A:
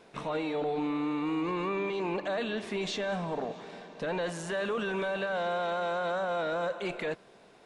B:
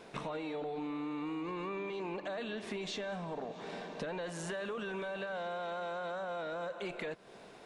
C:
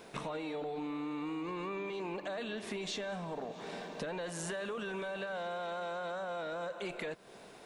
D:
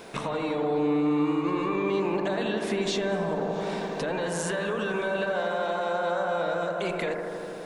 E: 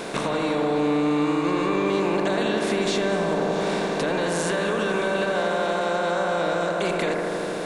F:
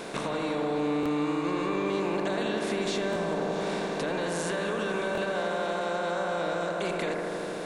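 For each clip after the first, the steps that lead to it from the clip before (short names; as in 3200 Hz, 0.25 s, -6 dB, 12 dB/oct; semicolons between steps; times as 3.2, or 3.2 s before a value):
compressor 6:1, threshold -41 dBFS, peak gain reduction 12 dB; gain +3.5 dB
high shelf 8800 Hz +11 dB
analogue delay 81 ms, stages 1024, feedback 85%, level -6 dB; gain +8 dB
per-bin compression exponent 0.6; gain +1 dB
stuck buffer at 1.01/3.11/5.13, samples 1024, times 1; gain -6 dB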